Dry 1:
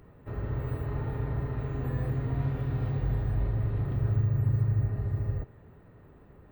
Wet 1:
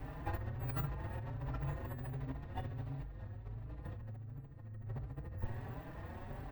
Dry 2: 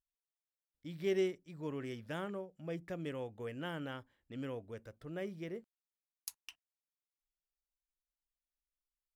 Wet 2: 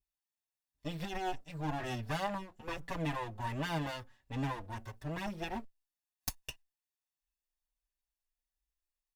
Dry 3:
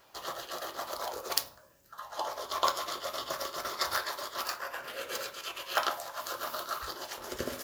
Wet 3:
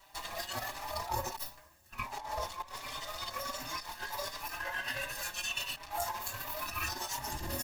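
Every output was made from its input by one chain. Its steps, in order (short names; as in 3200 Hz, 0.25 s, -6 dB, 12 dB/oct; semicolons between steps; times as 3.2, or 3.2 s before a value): minimum comb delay 1.1 ms; bell 180 Hz -11.5 dB 0.24 oct; negative-ratio compressor -42 dBFS, ratio -1; spectral noise reduction 9 dB; endless flanger 4.7 ms +1.4 Hz; gain +11 dB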